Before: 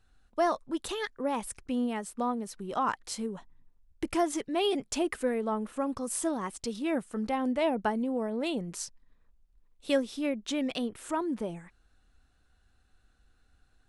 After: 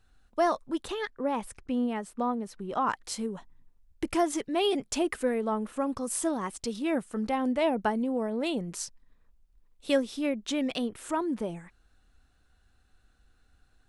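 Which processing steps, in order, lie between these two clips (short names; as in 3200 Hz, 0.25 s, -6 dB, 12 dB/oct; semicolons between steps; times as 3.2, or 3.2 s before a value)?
0.82–2.9 high shelf 4300 Hz -9.5 dB; gain +1.5 dB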